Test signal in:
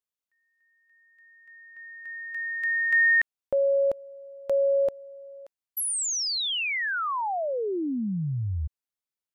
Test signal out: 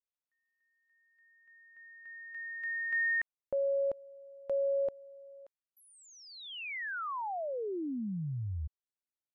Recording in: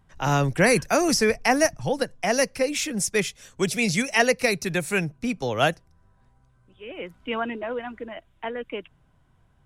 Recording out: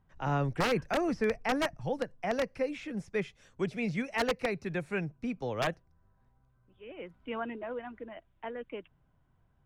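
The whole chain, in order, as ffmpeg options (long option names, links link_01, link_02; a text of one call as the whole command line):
ffmpeg -i in.wav -filter_complex "[0:a]acrossover=split=3000[link_01][link_02];[link_02]acompressor=threshold=-40dB:ratio=4:attack=1:release=60[link_03];[link_01][link_03]amix=inputs=2:normalize=0,aeval=exprs='(mod(3.76*val(0)+1,2)-1)/3.76':channel_layout=same,aemphasis=mode=reproduction:type=75fm,volume=-8.5dB" out.wav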